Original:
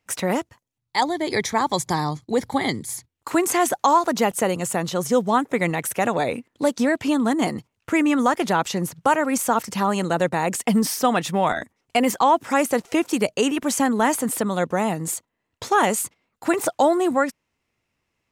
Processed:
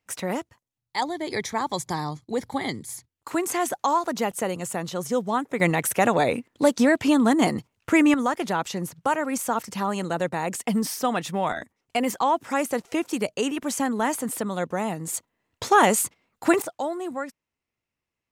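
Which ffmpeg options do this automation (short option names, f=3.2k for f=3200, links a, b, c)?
-af "asetnsamples=n=441:p=0,asendcmd='5.6 volume volume 1.5dB;8.14 volume volume -5dB;15.14 volume volume 1.5dB;16.62 volume volume -11dB',volume=-5.5dB"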